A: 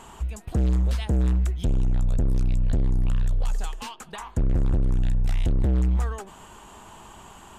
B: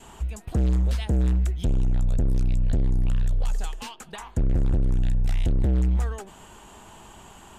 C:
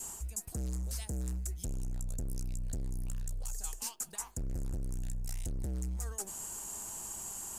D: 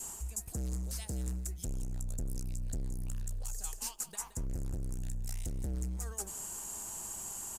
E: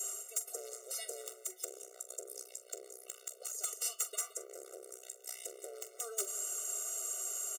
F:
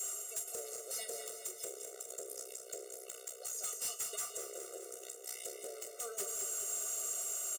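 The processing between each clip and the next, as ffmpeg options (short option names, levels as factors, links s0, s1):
-af "adynamicequalizer=threshold=0.00224:dfrequency=1100:dqfactor=2.4:tfrequency=1100:tqfactor=2.4:attack=5:release=100:ratio=0.375:range=2.5:mode=cutabove:tftype=bell"
-af "aexciter=amount=11.1:drive=3.7:freq=5000,areverse,acompressor=threshold=0.0355:ratio=10,areverse,volume=0.501"
-af "aecho=1:1:171:0.224"
-filter_complex "[0:a]aeval=exprs='(mod(21.1*val(0)+1,2)-1)/21.1':c=same,asplit=2[s0][s1];[s1]adelay=43,volume=0.224[s2];[s0][s2]amix=inputs=2:normalize=0,afftfilt=real='re*eq(mod(floor(b*sr/1024/380),2),1)':imag='im*eq(mod(floor(b*sr/1024/380),2),1)':win_size=1024:overlap=0.75,volume=1.88"
-filter_complex "[0:a]asoftclip=type=tanh:threshold=0.015,asplit=2[s0][s1];[s1]adelay=17,volume=0.282[s2];[s0][s2]amix=inputs=2:normalize=0,aecho=1:1:207|414|621|828|1035|1242|1449|1656:0.398|0.239|0.143|0.086|0.0516|0.031|0.0186|0.0111,volume=1.26"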